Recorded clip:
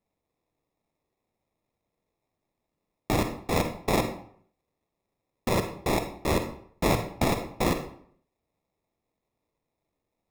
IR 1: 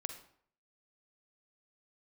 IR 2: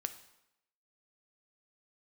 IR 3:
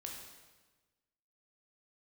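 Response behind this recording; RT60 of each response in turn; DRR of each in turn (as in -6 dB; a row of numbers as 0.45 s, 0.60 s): 1; 0.60 s, 0.85 s, 1.3 s; 6.5 dB, 8.5 dB, -0.5 dB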